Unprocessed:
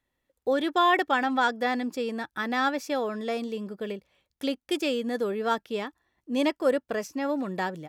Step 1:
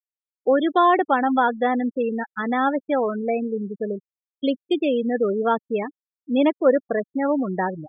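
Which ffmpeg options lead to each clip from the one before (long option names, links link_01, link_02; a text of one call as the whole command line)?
ffmpeg -i in.wav -filter_complex "[0:a]afftfilt=real='re*gte(hypot(re,im),0.0562)':imag='im*gte(hypot(re,im),0.0562)':win_size=1024:overlap=0.75,acrossover=split=1300[link_01][link_02];[link_02]acompressor=threshold=-40dB:ratio=6[link_03];[link_01][link_03]amix=inputs=2:normalize=0,volume=7dB" out.wav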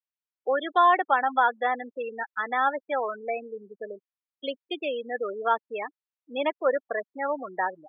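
ffmpeg -i in.wav -af "highpass=750,lowpass=3500" out.wav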